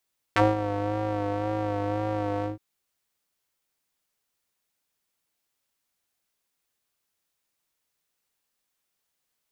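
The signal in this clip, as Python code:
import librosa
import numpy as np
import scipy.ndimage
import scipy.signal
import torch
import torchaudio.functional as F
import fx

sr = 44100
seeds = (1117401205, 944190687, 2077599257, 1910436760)

y = fx.sub_patch_vibrato(sr, seeds[0], note=44, wave='square', wave2='saw', interval_st=0, detune_cents=16, level2_db=-15, sub_db=-15.0, noise_db=-30.0, kind='bandpass', cutoff_hz=250.0, q=1.3, env_oct=3.0, env_decay_s=0.05, env_sustain_pct=40, attack_ms=3.0, decay_s=0.19, sustain_db=-12.0, release_s=0.14, note_s=2.08, lfo_hz=1.9, vibrato_cents=40)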